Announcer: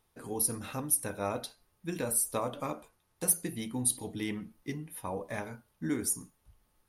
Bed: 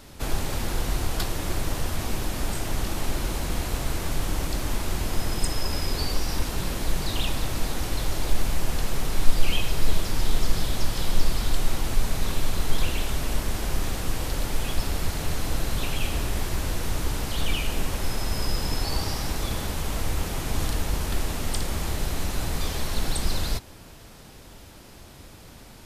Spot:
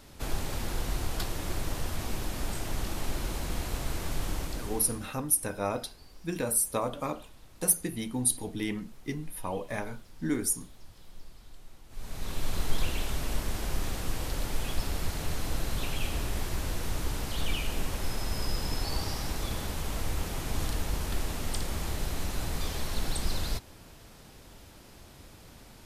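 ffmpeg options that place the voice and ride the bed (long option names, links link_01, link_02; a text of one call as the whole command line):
ffmpeg -i stem1.wav -i stem2.wav -filter_complex "[0:a]adelay=4400,volume=2.5dB[link_01];[1:a]volume=16.5dB,afade=type=out:start_time=4.3:duration=0.81:silence=0.0841395,afade=type=in:start_time=11.89:duration=0.67:silence=0.0794328[link_02];[link_01][link_02]amix=inputs=2:normalize=0" out.wav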